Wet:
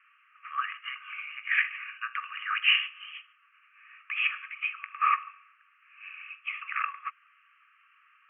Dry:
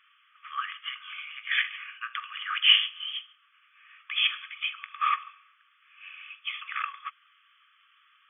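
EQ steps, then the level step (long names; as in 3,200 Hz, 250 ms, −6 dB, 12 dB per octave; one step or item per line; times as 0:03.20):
Chebyshev band-pass filter 1,100–2,800 Hz, order 5
+2.0 dB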